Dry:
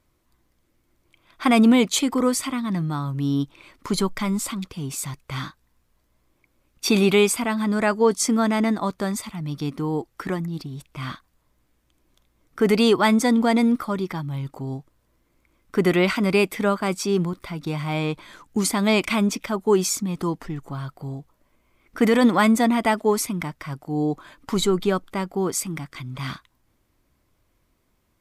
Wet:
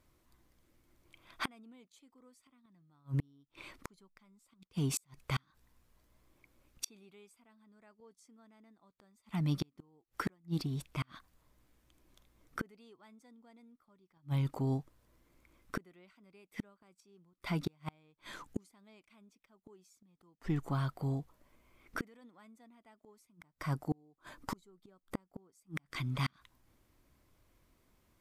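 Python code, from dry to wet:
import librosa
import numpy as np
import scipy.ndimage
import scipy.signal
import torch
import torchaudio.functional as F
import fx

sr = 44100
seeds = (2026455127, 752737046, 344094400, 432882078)

y = fx.peak_eq(x, sr, hz=2800.0, db=-6.0, octaves=1.2, at=(23.3, 25.77))
y = fx.gate_flip(y, sr, shuts_db=-20.0, range_db=-39)
y = F.gain(torch.from_numpy(y), -2.5).numpy()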